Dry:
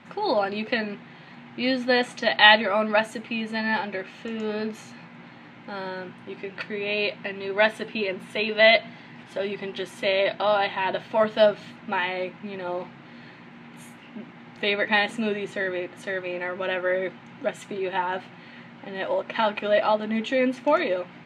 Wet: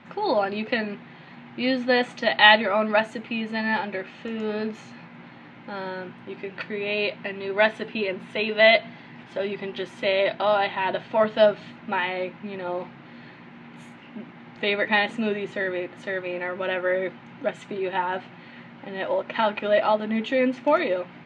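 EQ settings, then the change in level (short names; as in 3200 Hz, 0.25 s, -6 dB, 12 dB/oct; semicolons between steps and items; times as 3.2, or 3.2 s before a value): air absorption 91 m; +1.0 dB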